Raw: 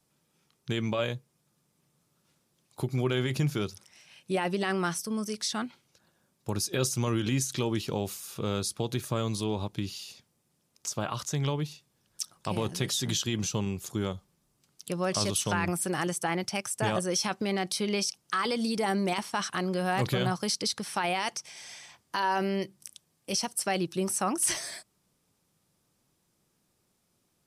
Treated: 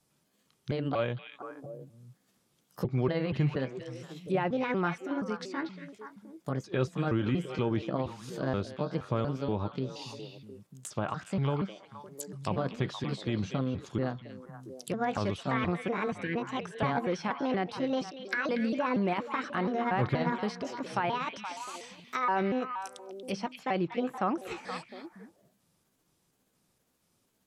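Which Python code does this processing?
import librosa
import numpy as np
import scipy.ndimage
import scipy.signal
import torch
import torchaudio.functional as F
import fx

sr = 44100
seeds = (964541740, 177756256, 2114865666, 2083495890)

p1 = fx.pitch_trill(x, sr, semitones=4.5, every_ms=237)
p2 = fx.spec_erase(p1, sr, start_s=16.11, length_s=0.24, low_hz=500.0, high_hz=1500.0)
p3 = fx.env_lowpass_down(p2, sr, base_hz=2000.0, full_db=-30.0)
y = p3 + fx.echo_stepped(p3, sr, ms=236, hz=2900.0, octaves=-1.4, feedback_pct=70, wet_db=-4.5, dry=0)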